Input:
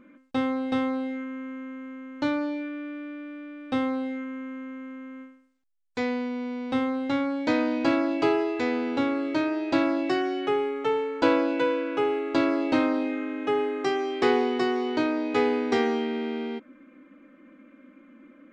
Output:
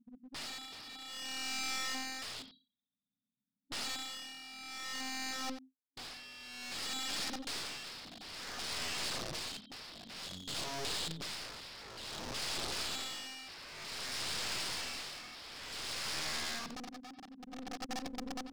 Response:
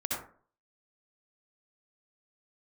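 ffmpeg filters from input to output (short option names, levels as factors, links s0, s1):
-filter_complex "[0:a]aeval=exprs='0.422*(cos(1*acos(clip(val(0)/0.422,-1,1)))-cos(1*PI/2))+0.211*(cos(4*acos(clip(val(0)/0.422,-1,1)))-cos(4*PI/2))+0.0531*(cos(8*acos(clip(val(0)/0.422,-1,1)))-cos(8*PI/2))':c=same,areverse,acompressor=mode=upward:threshold=0.0158:ratio=2.5,areverse,highpass=f=160:w=0.5412,highpass=f=160:w=1.3066[s0];[1:a]atrim=start_sample=2205[s1];[s0][s1]afir=irnorm=-1:irlink=0,afftfilt=real='re*(1-between(b*sr/4096,270,3100))':imag='im*(1-between(b*sr/4096,270,3100))':win_size=4096:overlap=0.75,acompressor=threshold=0.0501:ratio=3,anlmdn=0.398,aresample=11025,aeval=exprs='(mod(59.6*val(0)+1,2)-1)/59.6':c=same,aresample=44100,aecho=1:1:90:0.224,tremolo=f=0.55:d=0.8,aeval=exprs='clip(val(0),-1,0.00211)':c=same,adynamicequalizer=threshold=0.001:dfrequency=4000:dqfactor=0.7:tfrequency=4000:tqfactor=0.7:attack=5:release=100:ratio=0.375:range=4:mode=boostabove:tftype=highshelf,volume=1.41"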